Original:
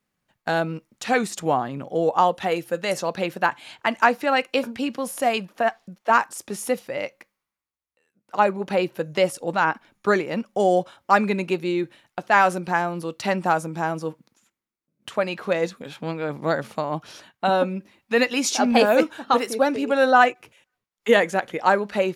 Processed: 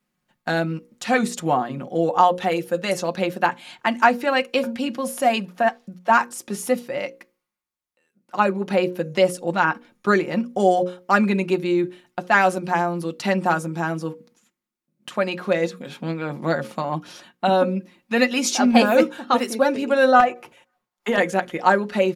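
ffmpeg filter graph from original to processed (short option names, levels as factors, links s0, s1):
-filter_complex "[0:a]asettb=1/sr,asplit=3[s0][s1][s2];[s0]atrim=end=20.204[s3];[s1]atrim=start=20.2:end=21.18,asetpts=PTS-STARTPTS,afade=t=in:d=0.004:c=qsin,afade=t=out:st=0.976:d=0.004:c=qsin,equalizer=f=810:w=0.79:g=10,acompressor=threshold=0.141:ratio=4:attack=3.2:release=140:knee=1:detection=peak,aeval=exprs='clip(val(0),-1,0.251)':c=same[s4];[s2]atrim=start=21.176[s5];[s3][s4]acrossfade=d=0.004:c1=hsin:c2=qsin[s6];[s6][s5]acrossfade=d=0.004:c1=qsin:c2=hsin,equalizer=f=250:w=4.8:g=9.5,bandreject=f=60:t=h:w=6,bandreject=f=120:t=h:w=6,bandreject=f=180:t=h:w=6,bandreject=f=240:t=h:w=6,bandreject=f=300:t=h:w=6,bandreject=f=360:t=h:w=6,bandreject=f=420:t=h:w=6,bandreject=f=480:t=h:w=6,bandreject=f=540:t=h:w=6,aecho=1:1:5.6:0.52"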